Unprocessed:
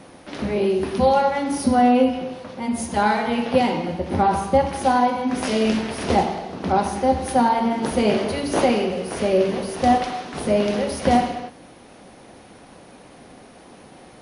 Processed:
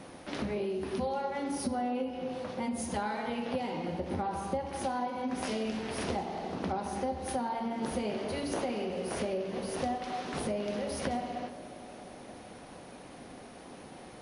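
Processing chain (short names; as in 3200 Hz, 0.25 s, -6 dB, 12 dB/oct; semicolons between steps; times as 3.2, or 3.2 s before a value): compressor 6:1, threshold -28 dBFS, peak gain reduction 15 dB; on a send: band-limited delay 0.177 s, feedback 80%, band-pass 430 Hz, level -14.5 dB; on the sum: gain -3.5 dB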